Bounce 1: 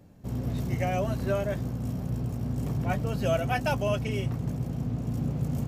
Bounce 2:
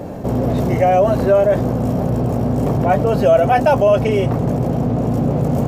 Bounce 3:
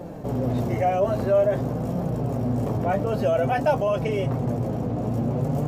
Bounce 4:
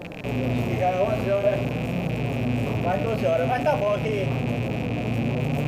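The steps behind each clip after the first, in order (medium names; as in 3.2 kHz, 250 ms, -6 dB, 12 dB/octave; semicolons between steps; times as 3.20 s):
peaking EQ 600 Hz +15 dB 2.4 oct; level flattener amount 50%
flange 0.51 Hz, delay 5.6 ms, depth 4.7 ms, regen +48%; trim -4 dB
rattle on loud lows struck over -37 dBFS, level -25 dBFS; de-hum 66.56 Hz, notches 28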